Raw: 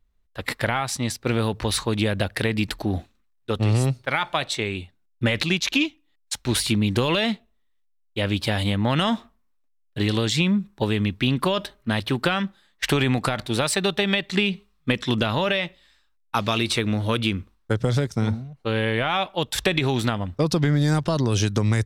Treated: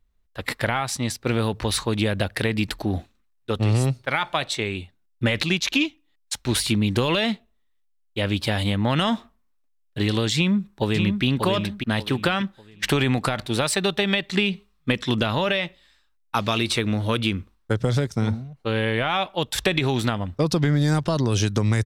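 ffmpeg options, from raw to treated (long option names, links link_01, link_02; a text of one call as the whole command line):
ffmpeg -i in.wav -filter_complex "[0:a]asplit=2[link_01][link_02];[link_02]afade=type=in:start_time=10.35:duration=0.01,afade=type=out:start_time=11.24:duration=0.01,aecho=0:1:590|1180|1770|2360:0.530884|0.159265|0.0477796|0.0143339[link_03];[link_01][link_03]amix=inputs=2:normalize=0" out.wav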